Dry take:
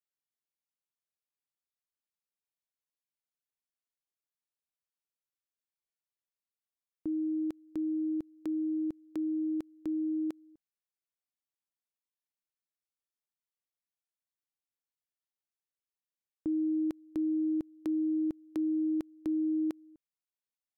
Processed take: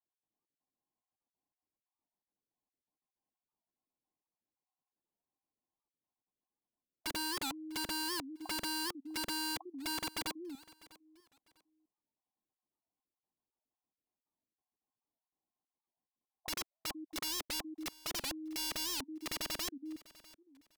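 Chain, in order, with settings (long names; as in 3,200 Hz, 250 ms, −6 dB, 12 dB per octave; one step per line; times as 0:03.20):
time-frequency cells dropped at random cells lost 28%
in parallel at −1 dB: downward compressor 12 to 1, threshold −41 dBFS, peak gain reduction 12.5 dB
on the sum: Chebyshev low-pass with heavy ripple 1,100 Hz, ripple 9 dB
wrap-around overflow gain 41 dB
on a send: repeating echo 649 ms, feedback 25%, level −21 dB
on the sum: wow of a warped record 78 rpm, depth 250 cents
level +8.5 dB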